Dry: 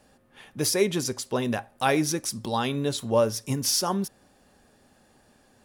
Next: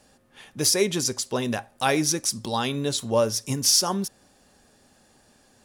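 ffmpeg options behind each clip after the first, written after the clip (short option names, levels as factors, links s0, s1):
-af "equalizer=f=6400:w=0.68:g=6.5"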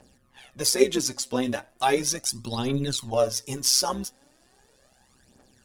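-af "aphaser=in_gain=1:out_gain=1:delay=4.1:decay=0.67:speed=0.37:type=triangular,tremolo=f=130:d=0.667,volume=0.841"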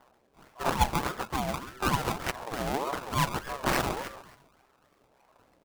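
-filter_complex "[0:a]asplit=5[s0][s1][s2][s3][s4];[s1]adelay=135,afreqshift=120,volume=0.282[s5];[s2]adelay=270,afreqshift=240,volume=0.116[s6];[s3]adelay=405,afreqshift=360,volume=0.0473[s7];[s4]adelay=540,afreqshift=480,volume=0.0195[s8];[s0][s5][s6][s7][s8]amix=inputs=5:normalize=0,acrusher=samples=25:mix=1:aa=0.000001:lfo=1:lforange=25:lforate=3.4,aeval=exprs='val(0)*sin(2*PI*640*n/s+640*0.35/1.7*sin(2*PI*1.7*n/s))':c=same,volume=0.794"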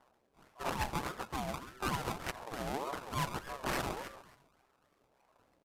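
-af "aeval=exprs='0.119*(abs(mod(val(0)/0.119+3,4)-2)-1)':c=same,aecho=1:1:82:0.0668,aresample=32000,aresample=44100,volume=0.447"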